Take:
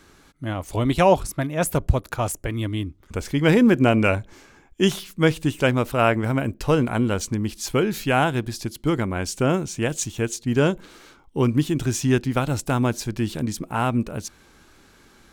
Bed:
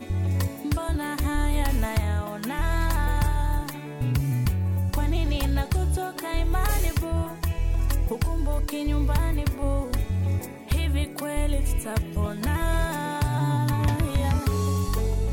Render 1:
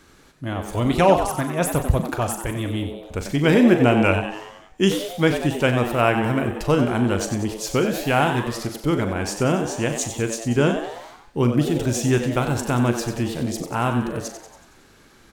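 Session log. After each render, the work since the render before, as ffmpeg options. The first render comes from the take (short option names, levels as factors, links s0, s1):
-filter_complex "[0:a]asplit=2[s0][s1];[s1]adelay=41,volume=0.299[s2];[s0][s2]amix=inputs=2:normalize=0,asplit=7[s3][s4][s5][s6][s7][s8][s9];[s4]adelay=93,afreqshift=110,volume=0.355[s10];[s5]adelay=186,afreqshift=220,volume=0.191[s11];[s6]adelay=279,afreqshift=330,volume=0.104[s12];[s7]adelay=372,afreqshift=440,volume=0.0556[s13];[s8]adelay=465,afreqshift=550,volume=0.0302[s14];[s9]adelay=558,afreqshift=660,volume=0.0162[s15];[s3][s10][s11][s12][s13][s14][s15]amix=inputs=7:normalize=0"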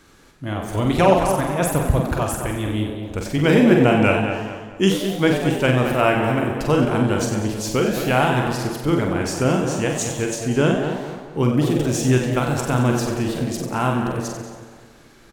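-filter_complex "[0:a]asplit=2[s0][s1];[s1]adelay=47,volume=0.473[s2];[s0][s2]amix=inputs=2:normalize=0,asplit=2[s3][s4];[s4]adelay=218,lowpass=f=2700:p=1,volume=0.398,asplit=2[s5][s6];[s6]adelay=218,lowpass=f=2700:p=1,volume=0.41,asplit=2[s7][s8];[s8]adelay=218,lowpass=f=2700:p=1,volume=0.41,asplit=2[s9][s10];[s10]adelay=218,lowpass=f=2700:p=1,volume=0.41,asplit=2[s11][s12];[s12]adelay=218,lowpass=f=2700:p=1,volume=0.41[s13];[s3][s5][s7][s9][s11][s13]amix=inputs=6:normalize=0"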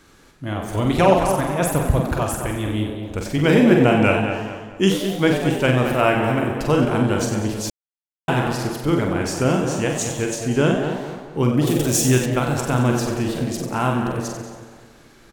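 -filter_complex "[0:a]asettb=1/sr,asplit=3[s0][s1][s2];[s0]atrim=end=11.674[s3];[s1]atrim=start=11.67:end=12.26,asetpts=PTS-STARTPTS,afade=t=in:d=0.004:c=qsin,afade=t=out:st=0.586:d=0.004:c=qsin,aemphasis=mode=production:type=50kf[s4];[s2]atrim=start=12.256[s5];[s3][s4]acrossfade=d=0.004:c1=hsin:c2=qsin[s6];[s6][s5]acrossfade=d=0.004:c1=qsin:c2=hsin,asplit=3[s7][s8][s9];[s7]atrim=end=7.7,asetpts=PTS-STARTPTS,afade=t=out:st=7.696:d=0.004:c=hsin[s10];[s8]atrim=start=7.7:end=8.28,asetpts=PTS-STARTPTS,volume=0[s11];[s9]atrim=start=8.28,asetpts=PTS-STARTPTS,afade=t=in:d=0.004:c=hsin[s12];[s10][s11][s12]concat=n=3:v=0:a=1"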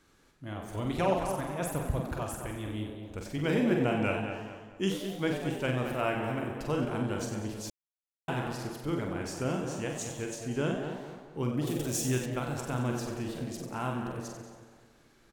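-af "volume=0.224"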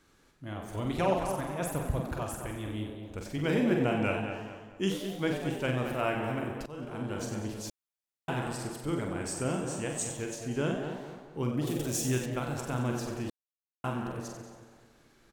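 -filter_complex "[0:a]asettb=1/sr,asplit=3[s0][s1][s2];[s0]atrim=end=8.424[s3];[s1]atrim=start=8.42:end=10.17,asetpts=PTS-STARTPTS,afade=t=in:d=0.004:c=qsin,afade=t=out:st=1.746:d=0.004:c=qsin,equalizer=f=8200:w=6.2:g=14[s4];[s2]atrim=start=10.166[s5];[s3][s4]acrossfade=d=0.004:c1=hsin:c2=qsin[s6];[s6][s5]acrossfade=d=0.004:c1=qsin:c2=hsin,asplit=4[s7][s8][s9][s10];[s7]atrim=end=6.66,asetpts=PTS-STARTPTS,afade=t=out:st=6.656:d=0.004:c=hsin:silence=0.133352[s11];[s8]atrim=start=6.66:end=13.3,asetpts=PTS-STARTPTS,afade=t=in:d=0.67:silence=0.133352,afade=t=out:st=6.636:d=0.004:c=hsin[s12];[s9]atrim=start=13.3:end=13.84,asetpts=PTS-STARTPTS,volume=0[s13];[s10]atrim=start=13.84,asetpts=PTS-STARTPTS,afade=t=in:d=0.004:c=hsin[s14];[s11][s12][s13][s14]concat=n=4:v=0:a=1"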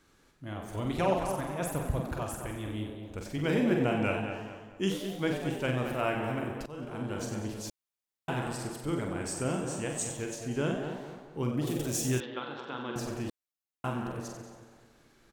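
-filter_complex "[0:a]asettb=1/sr,asplit=3[s0][s1][s2];[s0]atrim=end=12.204[s3];[s1]atrim=start=12.2:end=12.96,asetpts=PTS-STARTPTS,afade=t=in:d=0.004:c=qsin,afade=t=out:st=0.756:d=0.004:c=qsin,highpass=350,equalizer=f=660:t=q:w=4:g=-10,equalizer=f=2300:t=q:w=4:g=-6,equalizer=f=3500:t=q:w=4:g=10,lowpass=f=3600:w=0.5412,lowpass=f=3600:w=1.3066[s4];[s2]atrim=start=12.956[s5];[s3][s4]acrossfade=d=0.004:c1=hsin:c2=qsin[s6];[s6][s5]acrossfade=d=0.004:c1=qsin:c2=hsin"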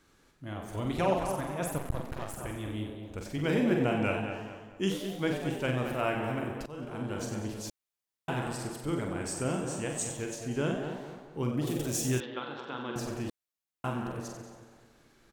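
-filter_complex "[0:a]asettb=1/sr,asplit=3[s0][s1][s2];[s0]atrim=end=1.784[s3];[s1]atrim=start=1.78:end=2.37,asetpts=PTS-STARTPTS,afade=t=in:d=0.004:c=qsin,afade=t=out:st=0.586:d=0.004:c=qsin,aeval=exprs='max(val(0),0)':c=same[s4];[s2]atrim=start=2.366[s5];[s3][s4]acrossfade=d=0.004:c1=hsin:c2=qsin[s6];[s6][s5]acrossfade=d=0.004:c1=qsin:c2=hsin"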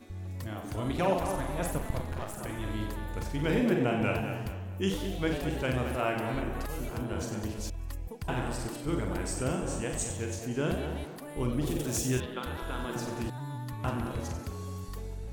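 -filter_complex "[1:a]volume=0.188[s0];[0:a][s0]amix=inputs=2:normalize=0"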